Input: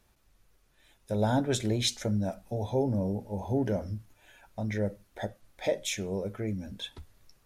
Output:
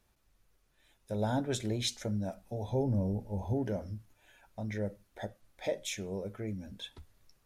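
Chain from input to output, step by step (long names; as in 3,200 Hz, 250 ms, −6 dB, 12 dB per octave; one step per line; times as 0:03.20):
0:02.68–0:03.54: low-shelf EQ 110 Hz +11.5 dB
level −5 dB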